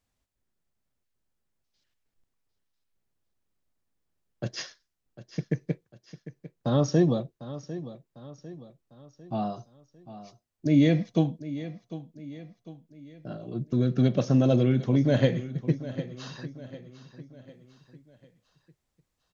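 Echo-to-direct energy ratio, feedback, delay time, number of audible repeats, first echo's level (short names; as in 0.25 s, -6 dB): -13.5 dB, 46%, 0.75 s, 4, -14.5 dB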